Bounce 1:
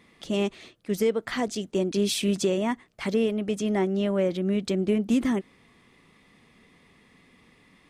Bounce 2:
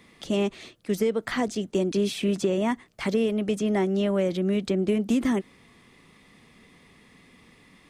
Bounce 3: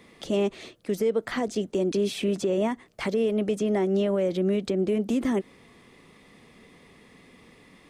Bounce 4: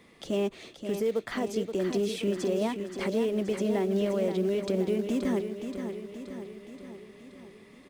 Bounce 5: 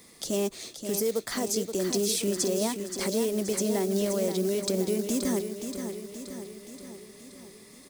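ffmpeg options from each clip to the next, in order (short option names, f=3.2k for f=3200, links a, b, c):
-filter_complex "[0:a]bass=f=250:g=1,treble=f=4k:g=3,acrossover=split=250|2600[a][b][c];[a]acompressor=threshold=-31dB:ratio=4[d];[b]acompressor=threshold=-25dB:ratio=4[e];[c]acompressor=threshold=-43dB:ratio=4[f];[d][e][f]amix=inputs=3:normalize=0,volume=2.5dB"
-af "alimiter=limit=-20dB:level=0:latency=1:release=173,equalizer=f=490:t=o:w=1.4:g=5.5"
-filter_complex "[0:a]asplit=2[a][b];[b]acrusher=bits=3:mode=log:mix=0:aa=0.000001,volume=-11dB[c];[a][c]amix=inputs=2:normalize=0,aecho=1:1:526|1052|1578|2104|2630|3156|3682:0.398|0.231|0.134|0.0777|0.0451|0.0261|0.0152,volume=-6dB"
-af "aexciter=amount=7.3:drive=2.4:freq=4.2k"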